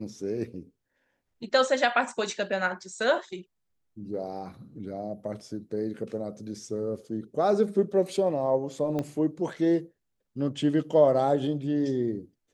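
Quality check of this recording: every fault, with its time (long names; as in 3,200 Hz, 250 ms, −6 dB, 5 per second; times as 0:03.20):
0:08.99: click −18 dBFS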